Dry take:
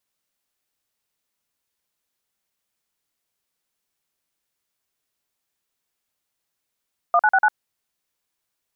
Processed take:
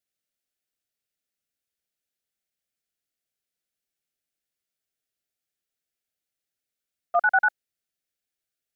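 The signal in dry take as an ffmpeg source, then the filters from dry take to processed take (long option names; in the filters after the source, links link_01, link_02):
-f lavfi -i "aevalsrc='0.168*clip(min(mod(t,0.097),0.053-mod(t,0.097))/0.002,0,1)*(eq(floor(t/0.097),0)*(sin(2*PI*697*mod(t,0.097))+sin(2*PI*1209*mod(t,0.097)))+eq(floor(t/0.097),1)*(sin(2*PI*852*mod(t,0.097))+sin(2*PI*1477*mod(t,0.097)))+eq(floor(t/0.097),2)*(sin(2*PI*770*mod(t,0.097))+sin(2*PI*1477*mod(t,0.097)))+eq(floor(t/0.097),3)*(sin(2*PI*852*mod(t,0.097))+sin(2*PI*1477*mod(t,0.097))))':duration=0.388:sample_rate=44100"
-af "agate=range=-8dB:threshold=-20dB:ratio=16:detection=peak,asuperstop=centerf=1000:order=4:qfactor=1.9"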